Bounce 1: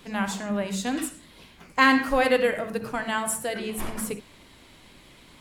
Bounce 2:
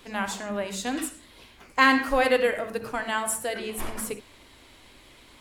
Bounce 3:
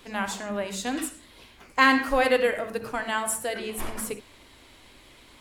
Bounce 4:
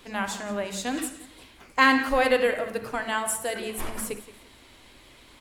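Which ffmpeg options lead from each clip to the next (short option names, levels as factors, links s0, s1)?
-af "equalizer=f=170:t=o:w=0.63:g=-11"
-af anull
-af "aecho=1:1:174|348|522:0.158|0.0507|0.0162"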